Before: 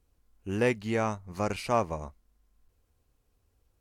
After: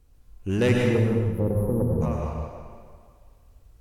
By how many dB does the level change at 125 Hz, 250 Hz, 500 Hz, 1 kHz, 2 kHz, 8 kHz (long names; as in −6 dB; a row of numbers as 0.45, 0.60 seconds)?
+13.0 dB, +8.5 dB, +5.0 dB, −5.0 dB, +2.5 dB, can't be measured